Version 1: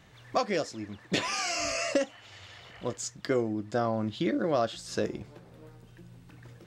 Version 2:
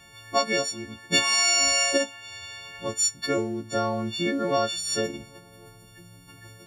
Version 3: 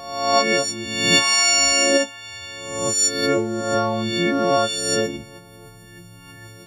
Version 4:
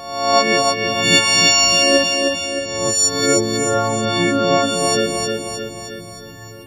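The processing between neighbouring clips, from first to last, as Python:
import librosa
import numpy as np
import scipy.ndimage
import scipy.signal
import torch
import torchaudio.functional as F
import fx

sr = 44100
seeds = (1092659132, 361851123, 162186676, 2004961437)

y1 = fx.freq_snap(x, sr, grid_st=4)
y1 = y1 * 10.0 ** (1.5 / 20.0)
y2 = fx.spec_swells(y1, sr, rise_s=0.92)
y2 = fx.attack_slew(y2, sr, db_per_s=540.0)
y2 = y2 * 10.0 ** (4.5 / 20.0)
y3 = fx.echo_feedback(y2, sr, ms=311, feedback_pct=56, wet_db=-4.0)
y3 = y3 * 10.0 ** (3.0 / 20.0)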